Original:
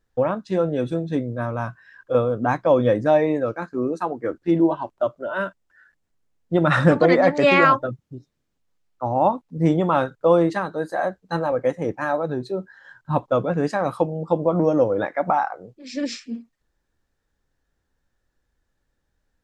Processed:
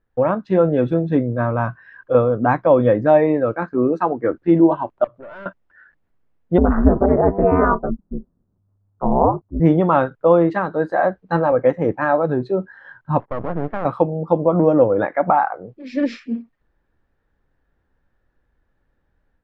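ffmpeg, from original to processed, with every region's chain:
-filter_complex "[0:a]asettb=1/sr,asplit=3[s0][s1][s2];[s0]atrim=end=5.044[s3];[s1]atrim=start=5.04:end=5.46,asetpts=PTS-STARTPTS,afade=t=in:d=0.004:c=qsin,afade=t=out:st=0.416:d=0.004:c=qsin,acompressor=threshold=0.00891:ratio=2.5:attack=3.2:release=140:knee=1:detection=peak,bandreject=f=60:t=h:w=6,bandreject=f=120:t=h:w=6,bandreject=f=180:t=h:w=6,aeval=exprs='(tanh(79.4*val(0)+0.4)-tanh(0.4))/79.4':c=same[s4];[s2]atrim=start=5.456[s5];[s3][s4]acrossfade=d=0.004:c1=hsin:c2=qsin[s6];[s6][s5]acrossfade=d=0.004:c1=qsin:c2=hsin,asettb=1/sr,asplit=3[s7][s8][s9];[s7]atrim=end=6.584[s10];[s8]atrim=start=6.58:end=9.6,asetpts=PTS-STARTPTS,afade=t=in:d=0.004:c=qsin,afade=t=out:st=3.016:d=0.004:c=qsin,lowpass=f=1200:w=0.5412,lowpass=f=1200:w=1.3066,equalizer=f=85:w=0.74:g=13.5,aeval=exprs='val(0)*sin(2*PI*100*n/s)':c=same[s11];[s9]atrim=start=9.596[s12];[s10][s11]acrossfade=d=0.004:c1=hsin:c2=qsin[s13];[s13][s12]acrossfade=d=0.004:c1=qsin:c2=hsin,asettb=1/sr,asplit=3[s14][s15][s16];[s14]atrim=end=13.204[s17];[s15]atrim=start=13.2:end=13.85,asetpts=PTS-STARTPTS,afade=t=in:d=0.004:c=qsin,afade=t=out:st=0.646:d=0.004:c=qsin,lowpass=f=1400:w=0.5412,lowpass=f=1400:w=1.3066,aeval=exprs='max(val(0),0)':c=same,acompressor=threshold=0.0562:ratio=2.5:attack=3.2:release=140:knee=1:detection=peak[s18];[s16]atrim=start=13.846[s19];[s17][s18]acrossfade=d=0.004:c1=hsin:c2=qsin[s20];[s20][s19]acrossfade=d=0.004:c1=qsin:c2=hsin,lowpass=2100,dynaudnorm=f=150:g=3:m=2.11"

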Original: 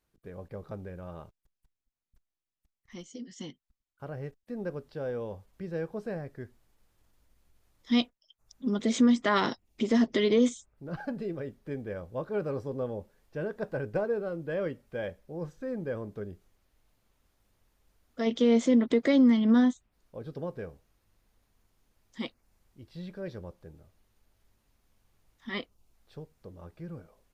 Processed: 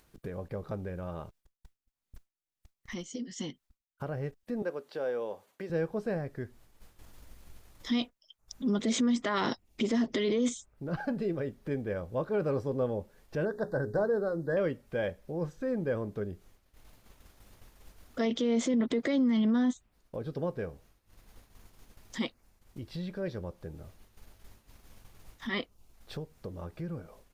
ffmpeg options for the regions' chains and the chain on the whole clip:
-filter_complex "[0:a]asettb=1/sr,asplit=3[s0][s1][s2];[s0]atrim=end=4.624[s3];[s1]atrim=start=4.62:end=5.7,asetpts=PTS-STARTPTS,afade=t=in:d=0.004:c=qsin,afade=t=out:st=1.076:d=0.004:c=qsin,highpass=380,bandreject=f=5200:w=16[s4];[s2]atrim=start=5.696[s5];[s3][s4]acrossfade=d=0.004:c1=hsin:c2=qsin[s6];[s6][s5]acrossfade=d=0.004:c1=qsin:c2=hsin,asettb=1/sr,asplit=3[s7][s8][s9];[s7]atrim=end=13.454[s10];[s8]atrim=start=13.45:end=14.57,asetpts=PTS-STARTPTS,afade=t=in:d=0.004:c=qsin,afade=t=out:st=1.116:d=0.004:c=qsin,asuperstop=centerf=2600:order=12:qfactor=1.5,bandreject=f=60:t=h:w=6,bandreject=f=120:t=h:w=6,bandreject=f=180:t=h:w=6,bandreject=f=240:t=h:w=6,bandreject=f=300:t=h:w=6,bandreject=f=360:t=h:w=6,bandreject=f=420:t=h:w=6[s11];[s9]atrim=start=14.566[s12];[s10][s11]acrossfade=d=0.004:c1=hsin:c2=qsin[s13];[s13][s12]acrossfade=d=0.004:c1=qsin:c2=hsin,agate=range=0.0224:threshold=0.00112:ratio=3:detection=peak,acompressor=mode=upward:threshold=0.0141:ratio=2.5,alimiter=limit=0.0631:level=0:latency=1:release=19,volume=1.41"

